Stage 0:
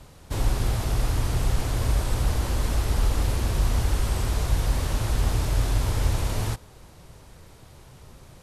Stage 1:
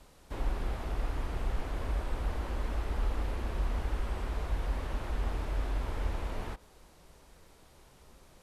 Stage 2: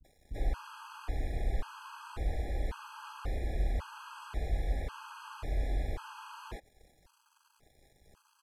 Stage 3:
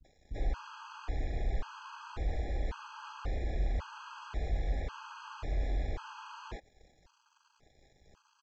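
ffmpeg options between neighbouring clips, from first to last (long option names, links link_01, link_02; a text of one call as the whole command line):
ffmpeg -i in.wav -filter_complex "[0:a]acrossover=split=3000[link_01][link_02];[link_02]acompressor=threshold=-54dB:ratio=4:attack=1:release=60[link_03];[link_01][link_03]amix=inputs=2:normalize=0,equalizer=frequency=110:width_type=o:width=0.87:gain=-13.5,volume=-7dB" out.wav
ffmpeg -i in.wav -filter_complex "[0:a]aeval=exprs='sgn(val(0))*max(abs(val(0))-0.00106,0)':channel_layout=same,acrossover=split=240[link_01][link_02];[link_02]adelay=40[link_03];[link_01][link_03]amix=inputs=2:normalize=0,afftfilt=real='re*gt(sin(2*PI*0.92*pts/sr)*(1-2*mod(floor(b*sr/1024/830),2)),0)':imag='im*gt(sin(2*PI*0.92*pts/sr)*(1-2*mod(floor(b*sr/1024/830),2)),0)':win_size=1024:overlap=0.75,volume=1dB" out.wav
ffmpeg -i in.wav -filter_complex "[0:a]asplit=2[link_01][link_02];[link_02]asoftclip=type=hard:threshold=-29.5dB,volume=-7dB[link_03];[link_01][link_03]amix=inputs=2:normalize=0,aresample=16000,aresample=44100,volume=-3dB" out.wav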